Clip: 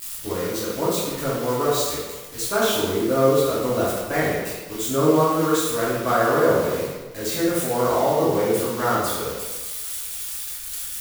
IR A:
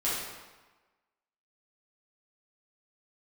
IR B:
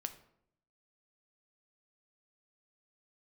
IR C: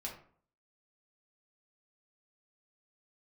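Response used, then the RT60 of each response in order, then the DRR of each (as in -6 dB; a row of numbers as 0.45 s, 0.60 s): A; 1.2 s, 0.70 s, 0.55 s; -9.5 dB, 8.0 dB, -3.0 dB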